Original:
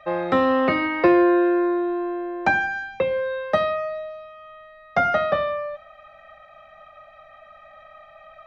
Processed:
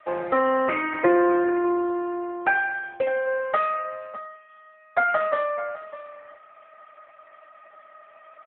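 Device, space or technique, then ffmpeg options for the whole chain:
satellite phone: -filter_complex "[0:a]asplit=3[link_01][link_02][link_03];[link_01]afade=type=out:start_time=3.26:duration=0.02[link_04];[link_02]aecho=1:1:3.9:0.64,afade=type=in:start_time=3.26:duration=0.02,afade=type=out:start_time=4.34:duration=0.02[link_05];[link_03]afade=type=in:start_time=4.34:duration=0.02[link_06];[link_04][link_05][link_06]amix=inputs=3:normalize=0,highpass=370,lowpass=3200,aecho=1:1:603:0.178" -ar 8000 -c:a libopencore_amrnb -b:a 6700

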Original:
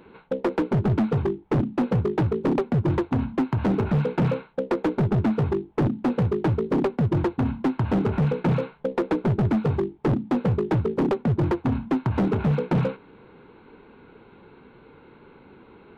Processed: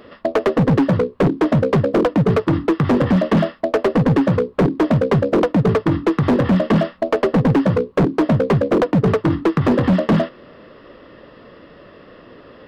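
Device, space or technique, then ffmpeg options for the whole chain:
nightcore: -af "asetrate=55566,aresample=44100,volume=7dB"

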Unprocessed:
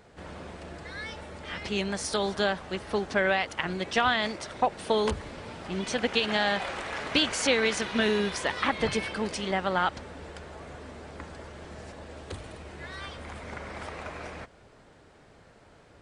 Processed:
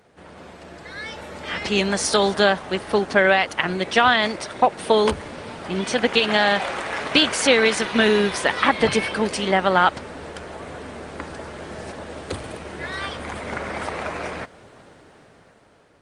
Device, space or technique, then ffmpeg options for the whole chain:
video call: -af "highpass=frequency=150:poles=1,dynaudnorm=framelen=280:gausssize=9:maxgain=11dB,volume=1dB" -ar 48000 -c:a libopus -b:a 32k

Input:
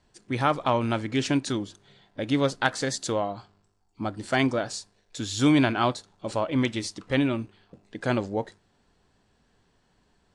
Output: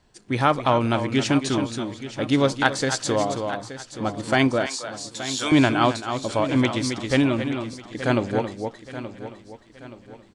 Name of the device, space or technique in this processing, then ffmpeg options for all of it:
ducked delay: -filter_complex "[0:a]asplit=3[link_01][link_02][link_03];[link_02]adelay=271,volume=-4dB[link_04];[link_03]apad=whole_len=468097[link_05];[link_04][link_05]sidechaincompress=threshold=-27dB:ratio=8:attack=28:release=639[link_06];[link_01][link_06]amix=inputs=2:normalize=0,asettb=1/sr,asplit=3[link_07][link_08][link_09];[link_07]atrim=end=4.664[link_10];[link_08]atrim=start=4.66:end=5.52,asetpts=PTS-STARTPTS,afade=type=in:duration=0.004:curve=qsin,afade=type=out:start_time=0.856:duration=0.004:curve=qsin,highpass=760[link_11];[link_09]atrim=start=5.516[link_12];[link_10][link_11]acrossfade=duration=0.004:curve1=hsin:curve2=qsin[link_13];[link_13][link_12]acrossfade=duration=0.004:curve1=qsin:curve2=hsin,aecho=1:1:875|1750|2625|3500:0.224|0.0918|0.0376|0.0154,volume=4dB"

